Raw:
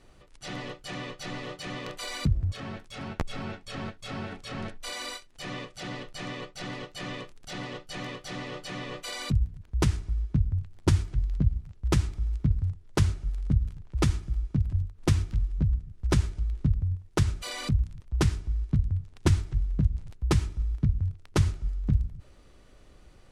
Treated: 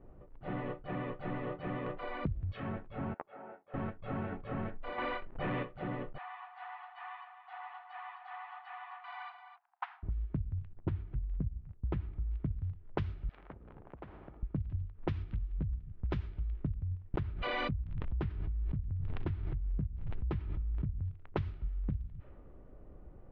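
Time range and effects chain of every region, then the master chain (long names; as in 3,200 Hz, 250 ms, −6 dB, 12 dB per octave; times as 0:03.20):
0:03.14–0:03.74: high-pass filter 740 Hz + head-to-tape spacing loss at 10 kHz 34 dB + notch filter 1,100 Hz, Q 19
0:04.98–0:05.63: low-pass filter 2,800 Hz 6 dB per octave + leveller curve on the samples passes 3
0:06.18–0:10.03: Chebyshev high-pass filter 710 Hz, order 10 + single-tap delay 259 ms −7.5 dB
0:10.73–0:12.31: downward expander −46 dBFS + head-to-tape spacing loss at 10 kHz 32 dB
0:13.29–0:14.43: downward compressor 2.5 to 1, threshold −41 dBFS + every bin compressed towards the loudest bin 4 to 1
0:17.14–0:21.05: low-pass filter 1,700 Hz 6 dB per octave + background raised ahead of every attack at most 30 dB per second
whole clip: low-pass filter 3,300 Hz 24 dB per octave; low-pass that shuts in the quiet parts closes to 720 Hz, open at −19.5 dBFS; downward compressor 6 to 1, threshold −35 dBFS; level +2 dB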